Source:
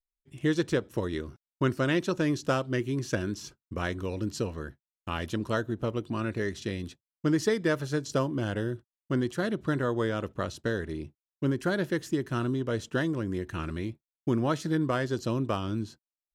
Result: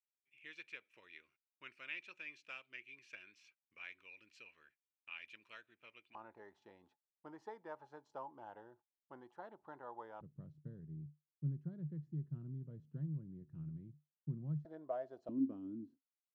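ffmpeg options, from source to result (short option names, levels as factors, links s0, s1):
-af "asetnsamples=n=441:p=0,asendcmd='6.15 bandpass f 850;10.21 bandpass f 150;14.65 bandpass f 670;15.29 bandpass f 270',bandpass=f=2400:t=q:w=13:csg=0"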